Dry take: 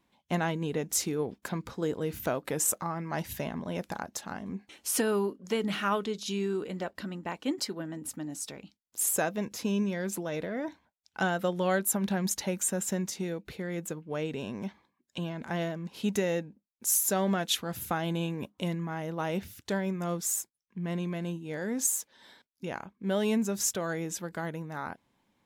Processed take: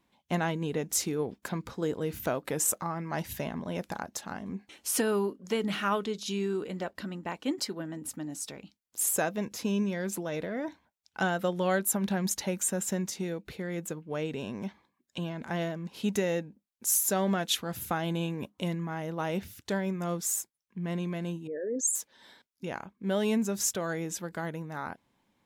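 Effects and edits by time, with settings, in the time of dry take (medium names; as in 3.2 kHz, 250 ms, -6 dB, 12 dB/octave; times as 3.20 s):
21.47–21.95 s: resonances exaggerated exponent 3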